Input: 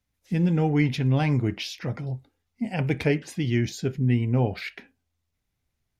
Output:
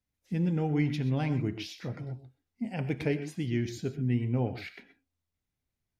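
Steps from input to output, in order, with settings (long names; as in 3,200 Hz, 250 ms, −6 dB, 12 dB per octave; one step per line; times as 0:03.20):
parametric band 270 Hz +3 dB 2 octaves
reverb whose tail is shaped and stops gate 150 ms rising, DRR 11 dB
level −8.5 dB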